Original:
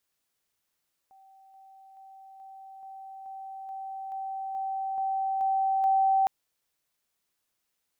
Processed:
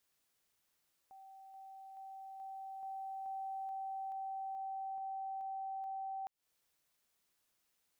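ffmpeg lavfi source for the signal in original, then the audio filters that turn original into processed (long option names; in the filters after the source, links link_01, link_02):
-f lavfi -i "aevalsrc='pow(10,(-53+3*floor(t/0.43))/20)*sin(2*PI*773*t)':duration=5.16:sample_rate=44100"
-af "acompressor=threshold=-36dB:ratio=6,alimiter=level_in=15dB:limit=-24dB:level=0:latency=1:release=205,volume=-15dB"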